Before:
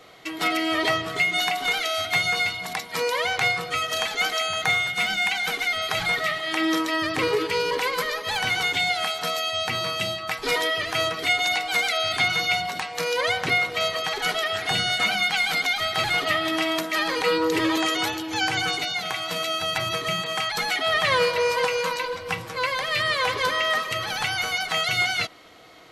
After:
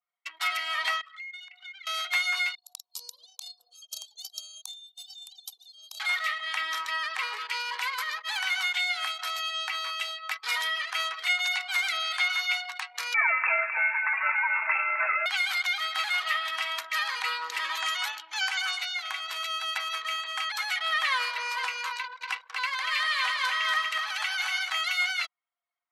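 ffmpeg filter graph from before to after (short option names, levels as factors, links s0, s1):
-filter_complex "[0:a]asettb=1/sr,asplit=3[s0][s1][s2];[s0]atrim=end=1.014[s3];[s1]atrim=start=1.01:end=1.87,asetpts=PTS-STARTPTS,afade=t=in:d=0.004:c=qsin,afade=t=out:st=0.856:d=0.004:c=qsin,highpass=1200,acompressor=threshold=0.0251:ratio=12:attack=3.2:release=140:knee=1:detection=peak[s4];[s2]atrim=start=1.866[s5];[s3][s4]acrossfade=d=0.004:c1=hsin:c2=qsin[s6];[s6][s5]acrossfade=d=0.004:c1=qsin:c2=hsin,asettb=1/sr,asplit=3[s7][s8][s9];[s7]atrim=end=2.554[s10];[s8]atrim=start=2.55:end=6,asetpts=PTS-STARTPTS,afade=t=in:d=0.004:c=qsin,afade=t=out:st=3.446:d=0.004:c=qsin,highshelf=f=12000:g=7.5,acrossover=split=310|3000[s11][s12][s13];[s12]acompressor=threshold=0.0141:ratio=10:attack=3.2:release=140:knee=2.83:detection=peak[s14];[s11][s14][s13]amix=inputs=3:normalize=0,asuperstop=centerf=1800:order=4:qfactor=0.57[s15];[s9]atrim=start=5.996[s16];[s10][s15]acrossfade=d=0.004:c1=hsin:c2=qsin[s17];[s17][s16]acrossfade=d=0.004:c1=qsin:c2=hsin,asettb=1/sr,asplit=3[s18][s19][s20];[s18]atrim=end=13.144[s21];[s19]atrim=start=13.14:end=15.26,asetpts=PTS-STARTPTS,afade=t=in:d=0.004:c=qsin,afade=t=out:st=2.116:d=0.004:c=qsin,acontrast=31,aecho=1:1:261:0.299,atrim=end_sample=93492,lowpass=f=2400:t=q:w=0.5098,lowpass=f=2400:t=q:w=0.6013,lowpass=f=2400:t=q:w=0.9,lowpass=f=2400:t=q:w=2.563,afreqshift=-2800[s22];[s20]atrim=start=15.256[s23];[s21][s22]acrossfade=d=0.004:c1=hsin:c2=qsin[s24];[s24][s23]acrossfade=d=0.004:c1=qsin:c2=hsin,asettb=1/sr,asplit=3[s25][s26][s27];[s25]atrim=end=21.974[s28];[s26]atrim=start=21.97:end=24.7,asetpts=PTS-STARTPTS,afade=t=in:d=0.004:c=qsin,afade=t=out:st=2.726:d=0.004:c=qsin,lowpass=12000,equalizer=f=240:w=1.2:g=-9,aecho=1:1:238|476|714:0.668|0.107|0.0171,atrim=end_sample=120393[s29];[s27]atrim=start=24.696[s30];[s28][s29]acrossfade=d=0.004:c1=hsin:c2=qsin[s31];[s31][s30]acrossfade=d=0.004:c1=qsin:c2=hsin,anlmdn=25.1,highpass=f=1000:w=0.5412,highpass=f=1000:w=1.3066,adynamicequalizer=threshold=0.02:dfrequency=3300:dqfactor=0.7:tfrequency=3300:tqfactor=0.7:attack=5:release=100:ratio=0.375:range=1.5:mode=cutabove:tftype=highshelf,volume=0.708"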